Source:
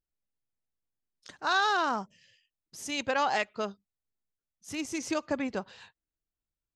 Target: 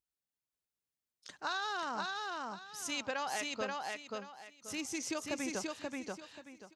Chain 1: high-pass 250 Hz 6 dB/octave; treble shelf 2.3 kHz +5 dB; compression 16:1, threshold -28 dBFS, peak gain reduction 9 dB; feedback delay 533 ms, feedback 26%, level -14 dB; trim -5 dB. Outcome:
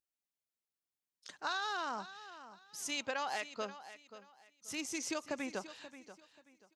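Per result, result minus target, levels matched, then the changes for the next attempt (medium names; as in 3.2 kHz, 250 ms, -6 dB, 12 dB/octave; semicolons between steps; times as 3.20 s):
echo-to-direct -11.5 dB; 125 Hz band -4.5 dB
change: feedback delay 533 ms, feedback 26%, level -2.5 dB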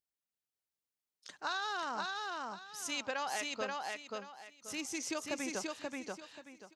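125 Hz band -3.5 dB
change: high-pass 93 Hz 6 dB/octave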